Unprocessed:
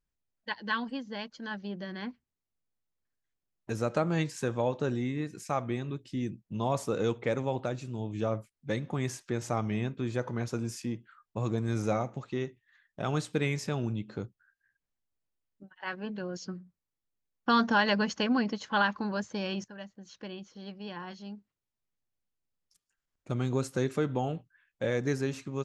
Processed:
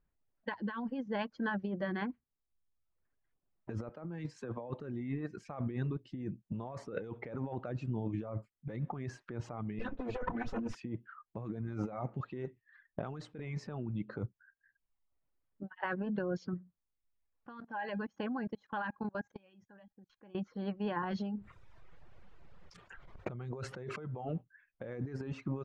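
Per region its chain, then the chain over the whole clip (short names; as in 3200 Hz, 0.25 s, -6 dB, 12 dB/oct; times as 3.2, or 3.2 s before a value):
3.89–4.7 block floating point 7-bit + HPF 120 Hz 24 dB/oct + three-band expander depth 70%
9.79–10.75 minimum comb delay 4 ms + sample leveller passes 1
17.6–20.35 resonator 820 Hz, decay 0.23 s, mix 70% + level quantiser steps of 21 dB
21.03–24.25 bell 270 Hz -13.5 dB 0.24 oct + fast leveller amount 50%
whole clip: reverb removal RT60 0.84 s; LPF 1700 Hz 12 dB/oct; negative-ratio compressor -40 dBFS, ratio -1; gain +1.5 dB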